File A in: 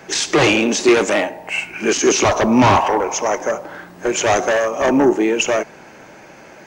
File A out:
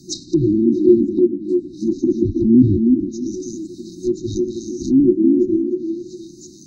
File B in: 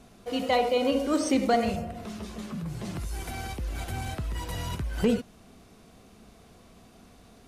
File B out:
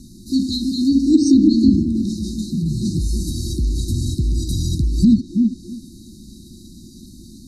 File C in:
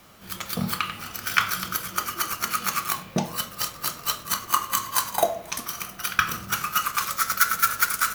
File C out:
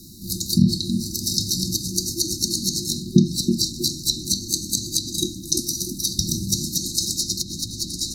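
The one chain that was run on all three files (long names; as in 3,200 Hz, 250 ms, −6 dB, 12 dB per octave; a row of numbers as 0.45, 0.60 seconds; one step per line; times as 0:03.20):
echo through a band-pass that steps 322 ms, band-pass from 290 Hz, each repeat 0.7 octaves, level −3 dB
brick-wall band-stop 370–3,700 Hz
treble cut that deepens with the level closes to 770 Hz, closed at −16 dBFS
normalise the peak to −2 dBFS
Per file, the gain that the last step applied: +3.0, +13.5, +12.5 decibels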